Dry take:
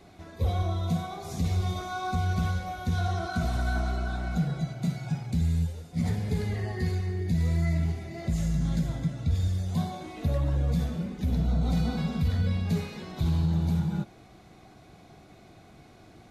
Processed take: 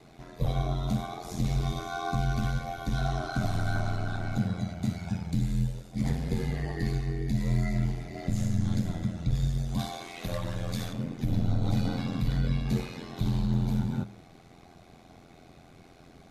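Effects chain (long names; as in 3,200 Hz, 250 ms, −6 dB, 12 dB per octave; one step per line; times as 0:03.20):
0:09.79–0:10.93: tilt shelving filter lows −7 dB, about 700 Hz
hum removal 78.62 Hz, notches 36
ring modulation 43 Hz
level +2.5 dB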